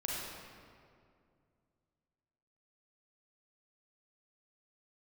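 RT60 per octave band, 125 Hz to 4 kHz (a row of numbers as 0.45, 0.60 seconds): 3.0, 2.8, 2.5, 2.1, 1.8, 1.4 seconds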